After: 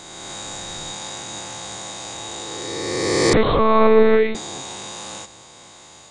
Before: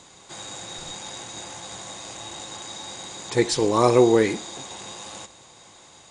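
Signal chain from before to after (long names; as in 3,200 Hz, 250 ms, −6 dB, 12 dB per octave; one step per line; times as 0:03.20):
peak hold with a rise ahead of every peak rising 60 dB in 2.35 s
0:03.33–0:04.35: one-pitch LPC vocoder at 8 kHz 220 Hz
level +1.5 dB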